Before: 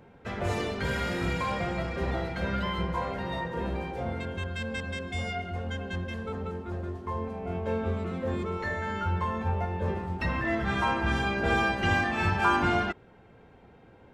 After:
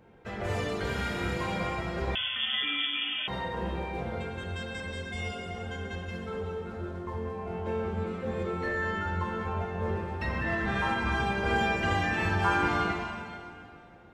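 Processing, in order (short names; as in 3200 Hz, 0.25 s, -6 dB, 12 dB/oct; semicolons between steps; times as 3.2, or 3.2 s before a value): plate-style reverb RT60 2.3 s, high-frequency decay 1×, DRR -1 dB; 2.15–3.28 inverted band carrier 3400 Hz; gain -4.5 dB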